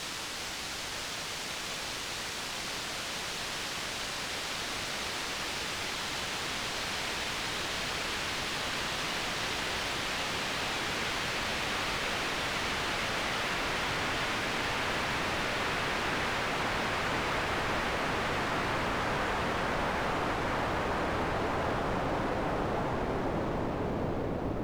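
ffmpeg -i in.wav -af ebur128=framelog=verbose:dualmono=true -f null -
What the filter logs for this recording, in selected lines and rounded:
Integrated loudness:
  I:         -28.9 LUFS
  Threshold: -38.9 LUFS
Loudness range:
  LRA:         3.5 LU
  Threshold: -48.7 LUFS
  LRA low:   -31.1 LUFS
  LRA high:  -27.6 LUFS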